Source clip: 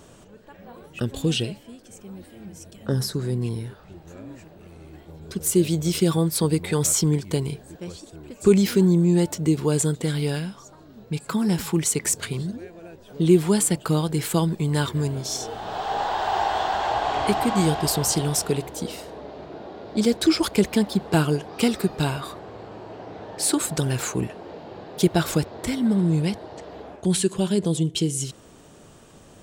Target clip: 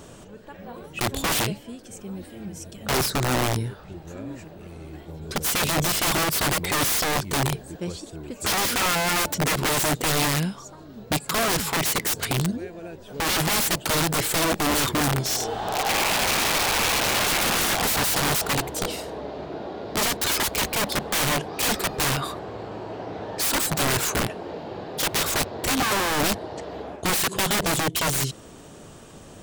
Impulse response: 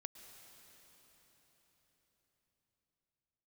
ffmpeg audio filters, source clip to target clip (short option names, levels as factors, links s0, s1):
-af "aeval=exprs='(mod(12.6*val(0)+1,2)-1)/12.6':c=same,volume=1.68" -ar 48000 -c:a aac -b:a 192k